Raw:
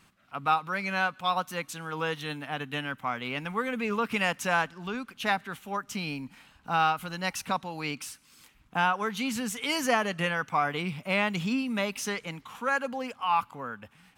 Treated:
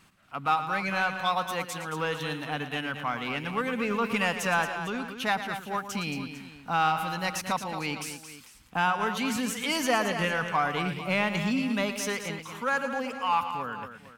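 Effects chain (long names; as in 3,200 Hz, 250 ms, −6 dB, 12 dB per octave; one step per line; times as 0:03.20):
in parallel at −6 dB: soft clipping −27.5 dBFS, distortion −8 dB
on the sum: multi-tap delay 113/224/450 ms −11.5/−9.5/−16 dB
level −2 dB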